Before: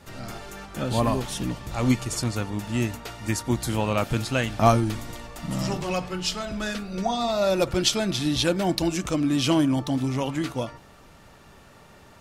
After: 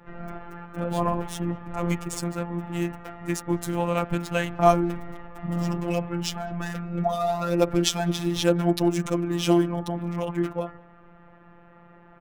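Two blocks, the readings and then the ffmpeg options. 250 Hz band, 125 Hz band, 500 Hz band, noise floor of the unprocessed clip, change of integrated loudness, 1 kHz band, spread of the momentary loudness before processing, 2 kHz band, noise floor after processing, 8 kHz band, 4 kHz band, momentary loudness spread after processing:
−1.0 dB, −1.5 dB, +1.0 dB, −51 dBFS, −1.0 dB, +0.5 dB, 11 LU, −3.0 dB, −52 dBFS, −3.5 dB, −5.0 dB, 11 LU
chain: -filter_complex "[0:a]equalizer=frequency=4400:width_type=o:width=0.27:gain=-7,acrossover=split=140|570|2200[link_01][link_02][link_03][link_04];[link_04]aeval=exprs='sgn(val(0))*max(abs(val(0))-0.0133,0)':channel_layout=same[link_05];[link_01][link_02][link_03][link_05]amix=inputs=4:normalize=0,afftfilt=real='hypot(re,im)*cos(PI*b)':imag='0':win_size=1024:overlap=0.75,asplit=2[link_06][link_07];[link_07]adelay=200,highpass=300,lowpass=3400,asoftclip=type=hard:threshold=-20dB,volume=-27dB[link_08];[link_06][link_08]amix=inputs=2:normalize=0,volume=3.5dB"

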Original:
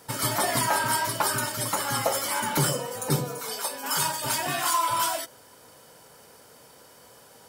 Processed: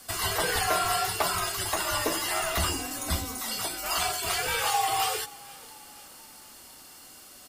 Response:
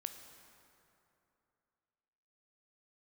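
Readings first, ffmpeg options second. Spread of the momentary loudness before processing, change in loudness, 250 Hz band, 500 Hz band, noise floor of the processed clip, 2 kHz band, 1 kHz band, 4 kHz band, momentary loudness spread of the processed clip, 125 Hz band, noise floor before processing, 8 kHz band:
7 LU, −1.5 dB, −5.0 dB, −2.0 dB, −50 dBFS, −0.5 dB, −2.0 dB, +1.0 dB, 21 LU, −6.0 dB, −53 dBFS, −2.0 dB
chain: -filter_complex "[0:a]afreqshift=-220,tiltshelf=frequency=1100:gain=-6,acrossover=split=3700[link_01][link_02];[link_02]acompressor=threshold=-31dB:ratio=4:attack=1:release=60[link_03];[link_01][link_03]amix=inputs=2:normalize=0,asplit=2[link_04][link_05];[link_05]asplit=4[link_06][link_07][link_08][link_09];[link_06]adelay=483,afreqshift=31,volume=-22dB[link_10];[link_07]adelay=966,afreqshift=62,volume=-27.5dB[link_11];[link_08]adelay=1449,afreqshift=93,volume=-33dB[link_12];[link_09]adelay=1932,afreqshift=124,volume=-38.5dB[link_13];[link_10][link_11][link_12][link_13]amix=inputs=4:normalize=0[link_14];[link_04][link_14]amix=inputs=2:normalize=0"

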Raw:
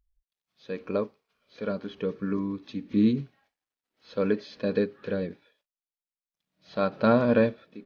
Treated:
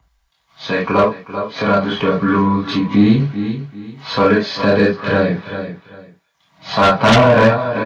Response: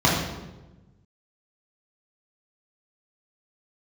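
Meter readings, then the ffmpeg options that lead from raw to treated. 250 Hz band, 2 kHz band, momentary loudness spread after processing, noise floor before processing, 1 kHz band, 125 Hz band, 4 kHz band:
+11.5 dB, +19.0 dB, 15 LU, below −85 dBFS, +19.5 dB, +16.0 dB, +22.0 dB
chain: -filter_complex "[0:a]highshelf=frequency=3100:gain=-6.5,aecho=1:1:390|780:0.15|0.0254[link_01];[1:a]atrim=start_sample=2205,atrim=end_sample=3528[link_02];[link_01][link_02]afir=irnorm=-1:irlink=0,acrossover=split=410|640[link_03][link_04][link_05];[link_05]aeval=exprs='1.41*sin(PI/2*3.98*val(0)/1.41)':channel_layout=same[link_06];[link_03][link_04][link_06]amix=inputs=3:normalize=0,acompressor=threshold=-21dB:ratio=1.5,asplit=2[link_07][link_08];[link_08]asoftclip=type=tanh:threshold=-11dB,volume=-5dB[link_09];[link_07][link_09]amix=inputs=2:normalize=0,volume=-5dB"

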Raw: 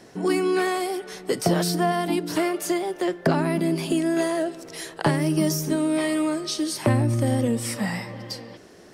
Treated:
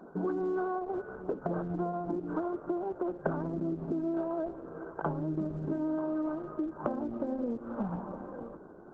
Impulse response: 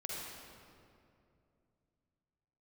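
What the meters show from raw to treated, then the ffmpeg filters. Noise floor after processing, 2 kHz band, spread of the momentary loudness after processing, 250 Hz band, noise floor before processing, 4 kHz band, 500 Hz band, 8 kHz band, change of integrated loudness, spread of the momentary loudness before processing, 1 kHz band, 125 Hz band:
−50 dBFS, −17.0 dB, 7 LU, −9.5 dB, −48 dBFS, below −35 dB, −9.5 dB, below −40 dB, −10.5 dB, 9 LU, −9.5 dB, −13.5 dB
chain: -af "afftfilt=real='re*between(b*sr/4096,140,1600)':imag='im*between(b*sr/4096,140,1600)':win_size=4096:overlap=0.75,bandreject=frequency=268.7:width_type=h:width=4,bandreject=frequency=537.4:width_type=h:width=4,bandreject=frequency=806.1:width_type=h:width=4,acompressor=threshold=-31dB:ratio=4" -ar 48000 -c:a libopus -b:a 10k

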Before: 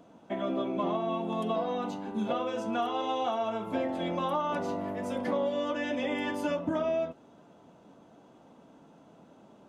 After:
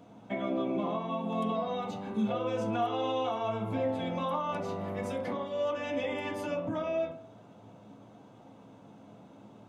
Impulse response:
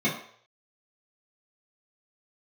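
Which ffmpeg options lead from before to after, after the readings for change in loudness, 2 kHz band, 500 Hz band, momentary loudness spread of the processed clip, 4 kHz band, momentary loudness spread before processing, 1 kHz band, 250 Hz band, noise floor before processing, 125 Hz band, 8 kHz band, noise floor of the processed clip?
−1.5 dB, −2.5 dB, −1.0 dB, 5 LU, −2.0 dB, 4 LU, −2.0 dB, −1.5 dB, −57 dBFS, +3.0 dB, can't be measured, −54 dBFS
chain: -filter_complex "[0:a]equalizer=frequency=110:width=5.1:gain=14.5,alimiter=level_in=1.5dB:limit=-24dB:level=0:latency=1:release=305,volume=-1.5dB,asplit=2[link_01][link_02];[link_02]bass=frequency=250:gain=-10,treble=frequency=4000:gain=-5[link_03];[1:a]atrim=start_sample=2205,lowpass=frequency=4600:width=0.5412,lowpass=frequency=4600:width=1.3066[link_04];[link_03][link_04]afir=irnorm=-1:irlink=0,volume=-13dB[link_05];[link_01][link_05]amix=inputs=2:normalize=0"

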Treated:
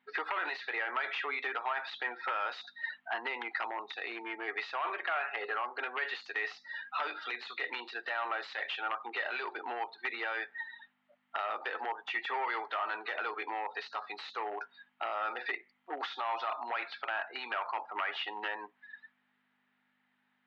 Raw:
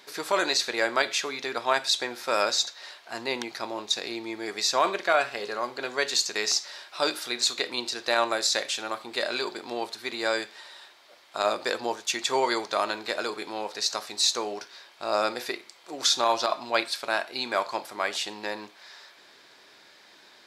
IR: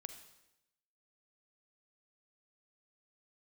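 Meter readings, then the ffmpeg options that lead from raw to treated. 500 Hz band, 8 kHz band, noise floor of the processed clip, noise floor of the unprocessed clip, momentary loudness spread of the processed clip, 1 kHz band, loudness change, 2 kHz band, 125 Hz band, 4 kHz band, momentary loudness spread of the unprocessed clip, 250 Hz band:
−13.5 dB, below −35 dB, −77 dBFS, −55 dBFS, 6 LU, −6.0 dB, −9.0 dB, −3.5 dB, below −25 dB, −16.0 dB, 11 LU, −15.0 dB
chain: -af "afftdn=noise_reduction=32:noise_floor=-38,acontrast=29,alimiter=limit=-12.5dB:level=0:latency=1:release=30,acompressor=threshold=-33dB:ratio=6,aeval=exprs='(mod(13.3*val(0)+1,2)-1)/13.3':channel_layout=same,aeval=exprs='val(0)+0.00178*(sin(2*PI*50*n/s)+sin(2*PI*2*50*n/s)/2+sin(2*PI*3*50*n/s)/3+sin(2*PI*4*50*n/s)/4+sin(2*PI*5*50*n/s)/5)':channel_layout=same,asoftclip=type=hard:threshold=-32dB,highpass=frequency=340:width=0.5412,highpass=frequency=340:width=1.3066,equalizer=frequency=350:width_type=q:width=4:gain=-6,equalizer=frequency=560:width_type=q:width=4:gain=-7,equalizer=frequency=820:width_type=q:width=4:gain=8,equalizer=frequency=1300:width_type=q:width=4:gain=8,equalizer=frequency=1900:width_type=q:width=4:gain=9,equalizer=frequency=2900:width_type=q:width=4:gain=7,lowpass=frequency=3000:width=0.5412,lowpass=frequency=3000:width=1.3066"

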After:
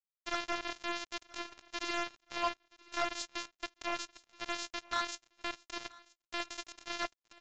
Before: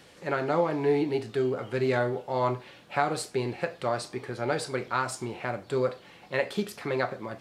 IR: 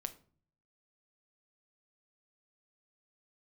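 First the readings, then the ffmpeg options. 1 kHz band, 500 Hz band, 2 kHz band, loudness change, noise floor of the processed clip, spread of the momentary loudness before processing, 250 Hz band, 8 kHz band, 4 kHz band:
−8.0 dB, −17.5 dB, −5.5 dB, −9.5 dB, below −85 dBFS, 7 LU, −14.5 dB, −3.0 dB, +1.5 dB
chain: -filter_complex "[0:a]highpass=190,acrossover=split=390 5100:gain=0.112 1 0.2[link_01][link_02][link_03];[link_01][link_02][link_03]amix=inputs=3:normalize=0,crystalizer=i=4.5:c=0,asoftclip=type=tanh:threshold=-14dB,flanger=delay=0.7:depth=7.9:regen=-85:speed=0.67:shape=sinusoidal,afftfilt=real='hypot(re,im)*cos(PI*b)':imag='0':win_size=512:overlap=0.75,acrusher=bits=4:mix=0:aa=0.5,aecho=1:1:976|1952:0.0708|0.0198,aresample=16000,aresample=44100,volume=1dB"

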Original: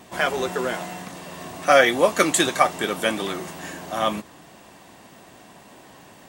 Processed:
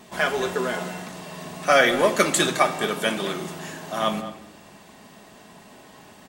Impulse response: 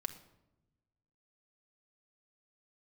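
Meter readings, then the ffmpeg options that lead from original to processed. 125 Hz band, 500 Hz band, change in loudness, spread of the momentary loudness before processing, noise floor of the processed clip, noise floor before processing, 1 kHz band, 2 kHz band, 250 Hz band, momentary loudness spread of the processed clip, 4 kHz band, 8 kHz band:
+1.5 dB, −1.5 dB, −1.5 dB, 19 LU, −49 dBFS, −49 dBFS, −1.5 dB, 0.0 dB, −0.5 dB, 18 LU, 0.0 dB, −1.0 dB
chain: -filter_complex "[0:a]equalizer=frequency=4300:width_type=o:width=0.77:gain=2,asplit=2[link_01][link_02];[link_02]adelay=210,highpass=300,lowpass=3400,asoftclip=type=hard:threshold=-10.5dB,volume=-14dB[link_03];[link_01][link_03]amix=inputs=2:normalize=0[link_04];[1:a]atrim=start_sample=2205[link_05];[link_04][link_05]afir=irnorm=-1:irlink=0"

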